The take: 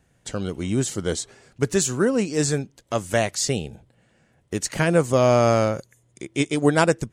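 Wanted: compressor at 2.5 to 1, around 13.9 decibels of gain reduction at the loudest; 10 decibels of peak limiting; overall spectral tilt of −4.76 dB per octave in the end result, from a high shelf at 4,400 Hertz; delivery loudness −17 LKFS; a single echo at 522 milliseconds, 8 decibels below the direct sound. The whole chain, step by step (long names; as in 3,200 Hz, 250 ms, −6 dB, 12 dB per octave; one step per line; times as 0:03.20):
high-shelf EQ 4,400 Hz −5 dB
downward compressor 2.5 to 1, threshold −35 dBFS
brickwall limiter −27 dBFS
single-tap delay 522 ms −8 dB
level +21 dB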